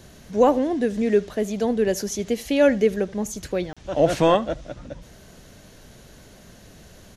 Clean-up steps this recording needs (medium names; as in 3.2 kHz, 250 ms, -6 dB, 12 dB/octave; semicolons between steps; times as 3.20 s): interpolate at 3.73 s, 36 ms; inverse comb 77 ms -22.5 dB